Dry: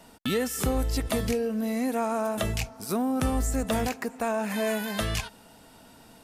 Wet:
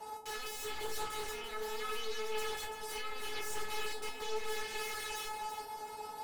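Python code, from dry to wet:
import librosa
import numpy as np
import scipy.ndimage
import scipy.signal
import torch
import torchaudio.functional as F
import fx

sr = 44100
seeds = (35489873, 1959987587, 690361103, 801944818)

y = scipy.signal.sosfilt(scipy.signal.butter(2, 51.0, 'highpass', fs=sr, output='sos'), x)
y = fx.peak_eq(y, sr, hz=890.0, db=11.5, octaves=1.2)
y = fx.level_steps(y, sr, step_db=17)
y = fx.fold_sine(y, sr, drive_db=19, ceiling_db=-21.0)
y = fx.comb_fb(y, sr, f0_hz=430.0, decay_s=0.26, harmonics='all', damping=0.0, mix_pct=100)
y = fx.echo_alternate(y, sr, ms=169, hz=950.0, feedback_pct=55, wet_db=-3.5)
y = fx.doppler_dist(y, sr, depth_ms=0.19)
y = y * 10.0 ** (-1.5 / 20.0)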